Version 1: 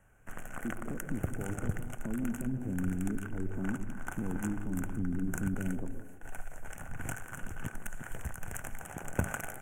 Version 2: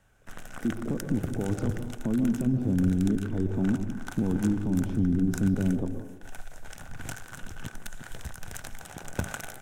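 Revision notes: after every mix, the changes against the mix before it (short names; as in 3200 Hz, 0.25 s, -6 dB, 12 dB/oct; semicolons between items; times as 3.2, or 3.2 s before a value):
speech +9.5 dB; master: remove Butterworth band-stop 4300 Hz, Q 1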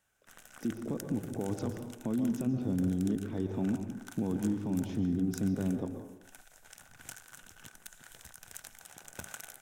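background -11.0 dB; master: add tilt +2.5 dB/oct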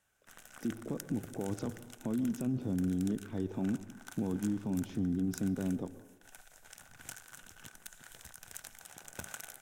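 speech: send -10.0 dB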